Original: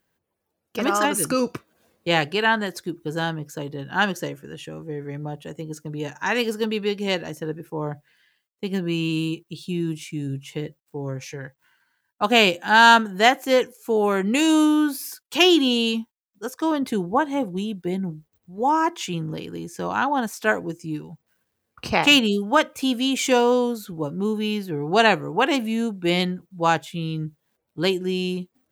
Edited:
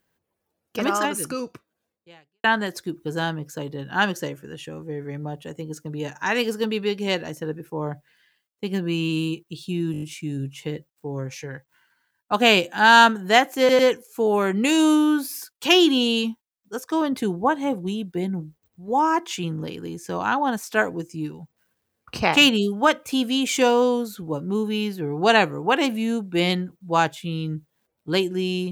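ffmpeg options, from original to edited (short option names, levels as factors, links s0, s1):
-filter_complex "[0:a]asplit=9[s0][s1][s2][s3][s4][s5][s6][s7][s8];[s0]atrim=end=2.44,asetpts=PTS-STARTPTS,afade=t=out:st=0.82:d=1.62:c=qua[s9];[s1]atrim=start=2.44:end=9.942,asetpts=PTS-STARTPTS,afade=t=in:d=0.004:c=hsin[s10];[s2]atrim=start=9.918:end=9.942[s11];[s3]atrim=start=9.918:end=9.942[s12];[s4]atrim=start=9.918:end=9.942[s13];[s5]atrim=start=9.918:end=9.942[s14];[s6]atrim=start=9.918:end=13.592[s15];[s7]atrim=start=13.488:end=13.592[s16];[s8]atrim=start=13.488[s17];[s9][s10]concat=n=2:v=0:a=1[s18];[s18][s11]acrossfade=d=0.004:c1=hsin:c2=hsin[s19];[s19][s12]acrossfade=d=0.004:c1=hsin:c2=hsin[s20];[s20][s13]acrossfade=d=0.004:c1=hsin:c2=hsin[s21];[s21][s14]acrossfade=d=0.004:c1=hsin:c2=hsin[s22];[s22][s15]acrossfade=d=0.004:c1=hsin:c2=hsin[s23];[s23][s16]acrossfade=d=0.004:c1=hsin:c2=hsin[s24];[s24][s17]acrossfade=d=0.004:c1=hsin:c2=hsin"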